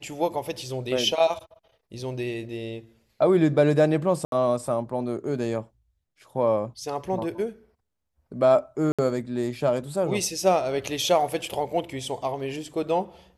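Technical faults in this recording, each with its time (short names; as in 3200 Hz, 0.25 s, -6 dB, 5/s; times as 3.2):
4.25–4.32 gap 72 ms
8.92–8.99 gap 66 ms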